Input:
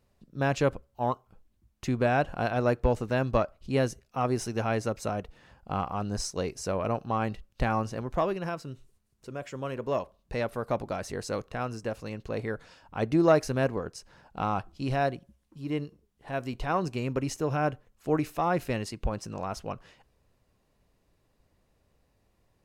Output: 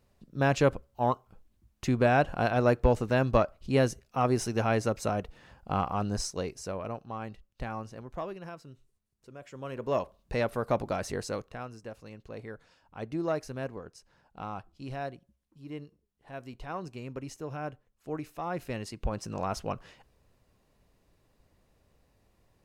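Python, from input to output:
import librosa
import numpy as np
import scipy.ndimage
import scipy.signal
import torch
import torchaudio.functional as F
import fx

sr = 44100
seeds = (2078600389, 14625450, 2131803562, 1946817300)

y = fx.gain(x, sr, db=fx.line((6.04, 1.5), (7.07, -9.5), (9.39, -9.5), (10.01, 1.5), (11.14, 1.5), (11.72, -9.5), (18.32, -9.5), (19.43, 2.0)))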